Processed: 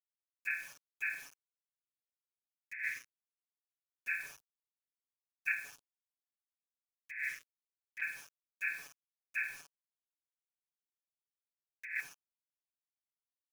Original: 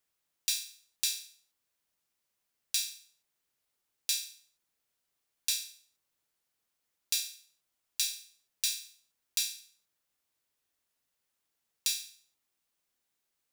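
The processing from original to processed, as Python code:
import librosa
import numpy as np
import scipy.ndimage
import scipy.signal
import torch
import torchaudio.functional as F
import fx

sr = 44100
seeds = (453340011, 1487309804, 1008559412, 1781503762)

y = fx.freq_compress(x, sr, knee_hz=1300.0, ratio=4.0)
y = np.where(np.abs(y) >= 10.0 ** (-48.5 / 20.0), y, 0.0)
y = fx.filter_lfo_notch(y, sr, shape='square', hz=0.25, low_hz=820.0, high_hz=2000.0, q=0.87)
y = fx.over_compress(y, sr, threshold_db=-38.0, ratio=-1.0)
y = y + 0.93 * np.pad(y, (int(7.1 * sr / 1000.0), 0))[:len(y)]
y = fx.band_widen(y, sr, depth_pct=40, at=(4.2, 5.52))
y = y * 10.0 ** (-2.5 / 20.0)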